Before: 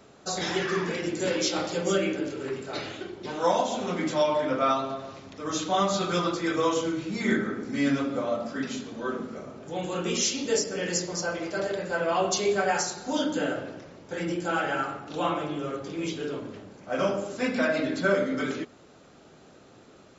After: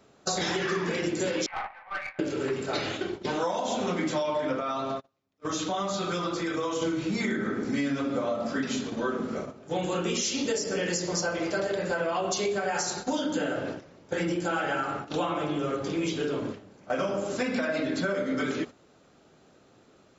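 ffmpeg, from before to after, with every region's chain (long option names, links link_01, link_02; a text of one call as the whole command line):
ffmpeg -i in.wav -filter_complex "[0:a]asettb=1/sr,asplit=3[link_01][link_02][link_03];[link_01]atrim=end=1.464[link_04];[link_02]atrim=start=1.46:end=2.19,asetpts=PTS-STARTPTS,afade=type=in:duration=0.004:curve=qsin,afade=type=out:start_time=0.726:duration=0.004:curve=qsin,asuperpass=centerf=1300:order=12:qfactor=0.81,bandreject=frequency=1400:width=12,aeval=exprs='(tanh(35.5*val(0)+0.35)-tanh(0.35))/35.5':channel_layout=same[link_05];[link_03]atrim=start=2.186[link_06];[link_04][link_05]acrossfade=duration=0.004:curve1=hsin:curve2=qsin[link_07];[link_07][link_06]acrossfade=duration=0.004:curve1=qsin:curve2=hsin,asettb=1/sr,asplit=3[link_08][link_09][link_10];[link_08]atrim=end=4.604[link_11];[link_09]atrim=start=4.6:end=6.82,asetpts=PTS-STARTPTS,afade=type=in:duration=0.004:curve=qsin,afade=type=out:start_time=2.216:duration=0.004:curve=qsin,agate=range=-30dB:threshold=-36dB:ratio=16:release=100:detection=peak,acompressor=threshold=-34dB:ratio=3:attack=3.2:release=140:knee=1:detection=peak[link_12];[link_10]atrim=start=6.816[link_13];[link_11][link_12]acrossfade=duration=0.004:curve1=hsin:curve2=qsin[link_14];[link_14][link_13]acrossfade=duration=0.004:curve1=qsin:curve2=hsin,agate=range=-12dB:threshold=-39dB:ratio=16:detection=peak,alimiter=limit=-18.5dB:level=0:latency=1:release=88,acompressor=threshold=-32dB:ratio=6,volume=6.5dB" out.wav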